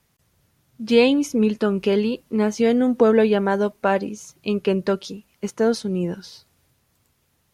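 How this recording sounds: noise floor -67 dBFS; spectral tilt -5.0 dB/oct

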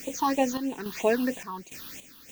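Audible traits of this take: a quantiser's noise floor 8-bit, dither triangular; random-step tremolo, depth 75%; phasing stages 6, 3.1 Hz, lowest notch 570–1400 Hz

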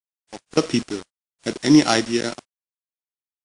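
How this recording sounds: a buzz of ramps at a fixed pitch in blocks of 8 samples; random-step tremolo, depth 90%; a quantiser's noise floor 6-bit, dither none; WMA

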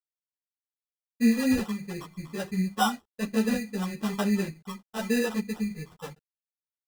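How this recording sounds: a quantiser's noise floor 10-bit, dither none; phasing stages 12, 1 Hz, lowest notch 690–2600 Hz; aliases and images of a low sample rate 2200 Hz, jitter 0%; a shimmering, thickened sound

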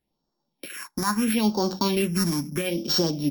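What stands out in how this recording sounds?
a buzz of ramps at a fixed pitch in blocks of 8 samples; phasing stages 4, 0.75 Hz, lowest notch 460–2300 Hz

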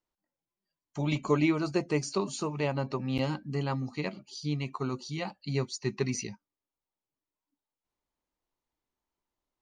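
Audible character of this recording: noise floor -93 dBFS; spectral tilt -5.5 dB/oct

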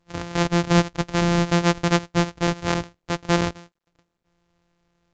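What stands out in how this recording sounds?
a buzz of ramps at a fixed pitch in blocks of 256 samples; µ-law

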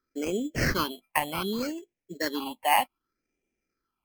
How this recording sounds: aliases and images of a low sample rate 3700 Hz, jitter 0%; phasing stages 6, 0.65 Hz, lowest notch 380–1200 Hz; MP3

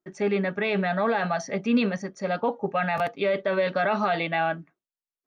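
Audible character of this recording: noise floor -96 dBFS; spectral tilt -4.0 dB/oct

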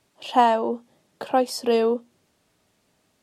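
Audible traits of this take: noise floor -68 dBFS; spectral tilt -2.0 dB/oct

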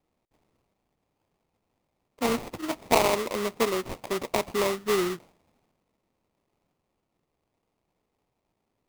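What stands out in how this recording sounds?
aliases and images of a low sample rate 1600 Hz, jitter 20%

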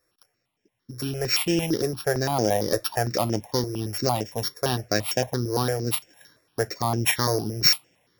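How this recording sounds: a buzz of ramps at a fixed pitch in blocks of 8 samples; notches that jump at a steady rate 8.8 Hz 820–4100 Hz

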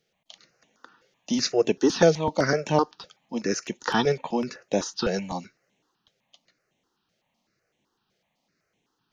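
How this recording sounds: notches that jump at a steady rate 7.9 Hz 270–4800 Hz

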